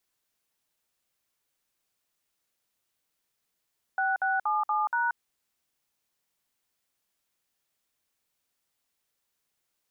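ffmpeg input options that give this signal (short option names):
-f lavfi -i "aevalsrc='0.0473*clip(min(mod(t,0.237),0.181-mod(t,0.237))/0.002,0,1)*(eq(floor(t/0.237),0)*(sin(2*PI*770*mod(t,0.237))+sin(2*PI*1477*mod(t,0.237)))+eq(floor(t/0.237),1)*(sin(2*PI*770*mod(t,0.237))+sin(2*PI*1477*mod(t,0.237)))+eq(floor(t/0.237),2)*(sin(2*PI*852*mod(t,0.237))+sin(2*PI*1209*mod(t,0.237)))+eq(floor(t/0.237),3)*(sin(2*PI*852*mod(t,0.237))+sin(2*PI*1209*mod(t,0.237)))+eq(floor(t/0.237),4)*(sin(2*PI*941*mod(t,0.237))+sin(2*PI*1477*mod(t,0.237))))':d=1.185:s=44100"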